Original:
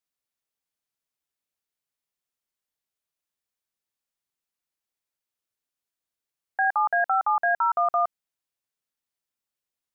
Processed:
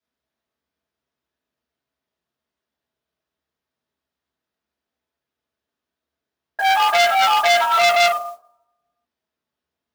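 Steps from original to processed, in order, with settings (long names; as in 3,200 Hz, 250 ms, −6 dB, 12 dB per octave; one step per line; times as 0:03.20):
convolution reverb RT60 0.60 s, pre-delay 3 ms, DRR −10 dB
noise that follows the level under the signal 21 dB
saturating transformer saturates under 3,200 Hz
level −7 dB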